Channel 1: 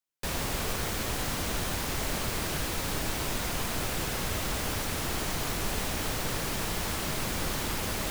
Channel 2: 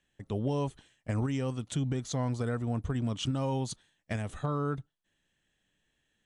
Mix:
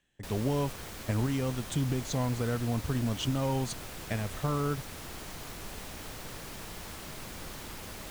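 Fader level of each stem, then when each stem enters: −11.0, +1.0 decibels; 0.00, 0.00 seconds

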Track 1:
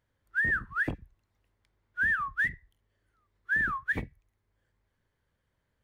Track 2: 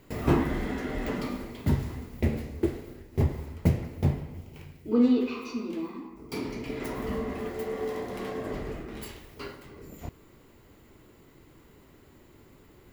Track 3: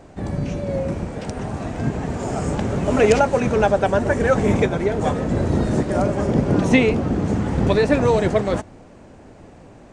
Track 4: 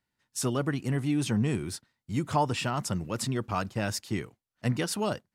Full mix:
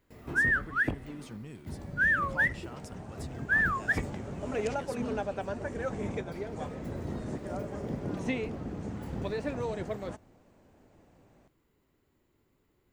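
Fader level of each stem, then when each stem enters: +1.5, −17.0, −17.0, −17.0 decibels; 0.00, 0.00, 1.55, 0.00 seconds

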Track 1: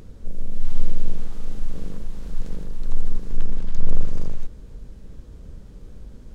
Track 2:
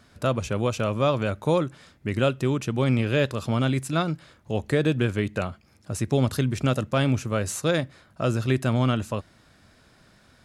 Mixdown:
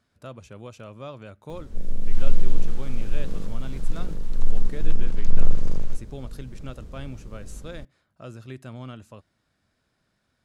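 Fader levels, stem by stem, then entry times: +0.5, −16.0 decibels; 1.50, 0.00 seconds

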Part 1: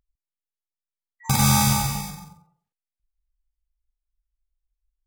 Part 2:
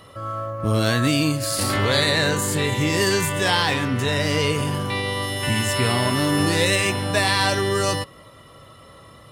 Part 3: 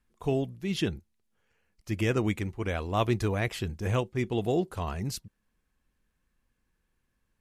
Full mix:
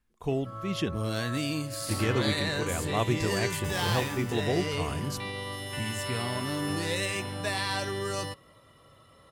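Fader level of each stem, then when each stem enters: −20.0, −11.0, −1.5 decibels; 2.35, 0.30, 0.00 seconds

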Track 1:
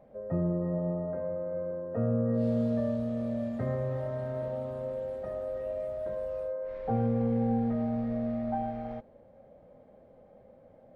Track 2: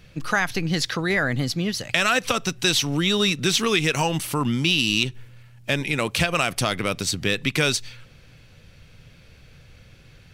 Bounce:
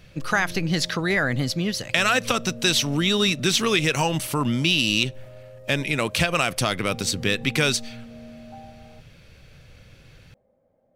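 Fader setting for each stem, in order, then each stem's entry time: −10.5, 0.0 decibels; 0.00, 0.00 seconds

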